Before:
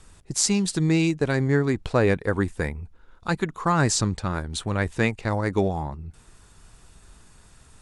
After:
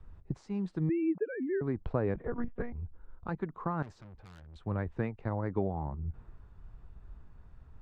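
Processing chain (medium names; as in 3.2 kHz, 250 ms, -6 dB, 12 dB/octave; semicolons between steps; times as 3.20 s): 0.89–1.61 s: formants replaced by sine waves; tilt shelf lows -5 dB, about 690 Hz; compression 2.5:1, threshold -40 dBFS, peak gain reduction 17.5 dB; low-pass 1.1 kHz 12 dB/octave; bass shelf 420 Hz +9 dB; 2.14–2.73 s: monotone LPC vocoder at 8 kHz 240 Hz; 3.82–4.56 s: valve stage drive 44 dB, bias 0.4; three bands expanded up and down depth 40%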